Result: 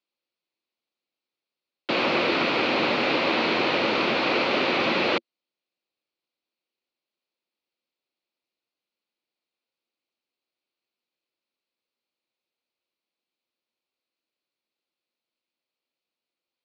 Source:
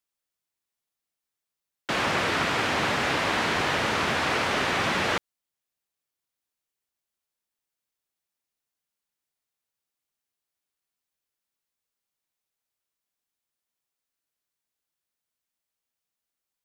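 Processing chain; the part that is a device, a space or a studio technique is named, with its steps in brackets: kitchen radio (cabinet simulation 170–4500 Hz, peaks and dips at 240 Hz +5 dB, 340 Hz +8 dB, 530 Hz +7 dB, 1.7 kHz -6 dB, 2.5 kHz +6 dB, 4.3 kHz +7 dB)

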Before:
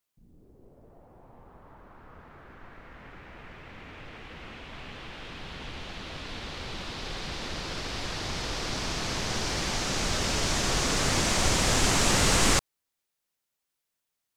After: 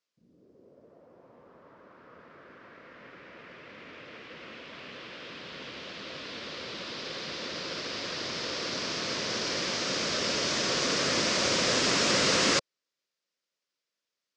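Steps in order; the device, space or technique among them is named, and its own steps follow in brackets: full-range speaker at full volume (loudspeaker Doppler distortion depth 0.27 ms; cabinet simulation 210–6400 Hz, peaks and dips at 530 Hz +5 dB, 810 Hz -10 dB, 5 kHz +4 dB)

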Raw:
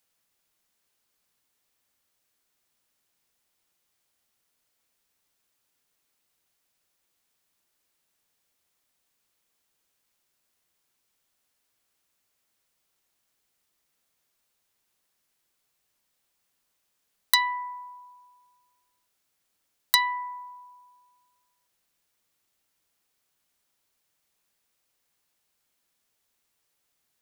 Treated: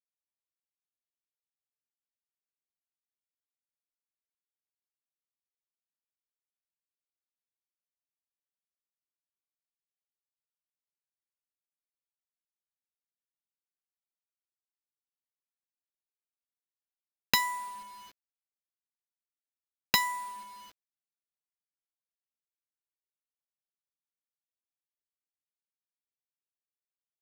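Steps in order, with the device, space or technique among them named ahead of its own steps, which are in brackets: early 8-bit sampler (sample-rate reducer 9.1 kHz, jitter 0%; bit crusher 8-bit); trim -4.5 dB

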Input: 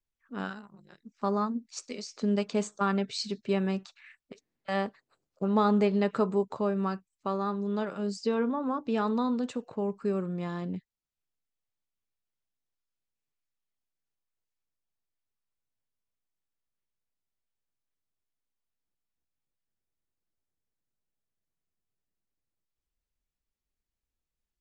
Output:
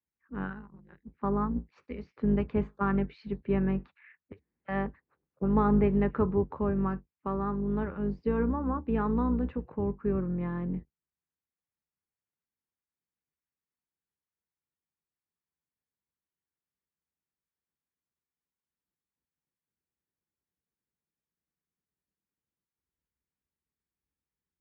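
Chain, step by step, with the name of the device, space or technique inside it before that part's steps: sub-octave bass pedal (octave divider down 2 oct, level 0 dB; cabinet simulation 61–2100 Hz, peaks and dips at 110 Hz -7 dB, 170 Hz +3 dB, 650 Hz -9 dB, 1.3 kHz -3 dB)

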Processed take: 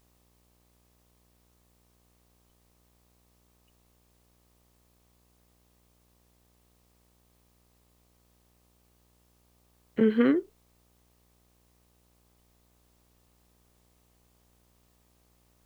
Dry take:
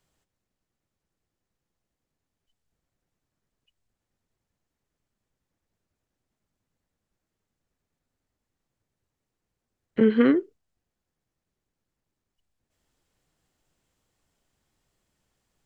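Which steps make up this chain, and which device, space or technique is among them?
video cassette with head-switching buzz (mains buzz 60 Hz, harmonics 21, -64 dBFS -5 dB/octave; white noise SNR 34 dB); trim -3.5 dB

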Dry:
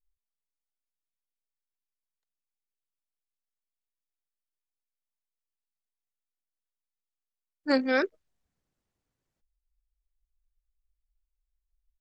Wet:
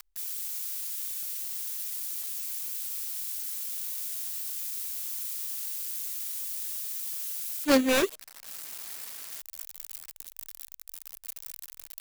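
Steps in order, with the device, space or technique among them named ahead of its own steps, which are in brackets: budget class-D amplifier (dead-time distortion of 0.28 ms; zero-crossing glitches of -27 dBFS); trim +4 dB

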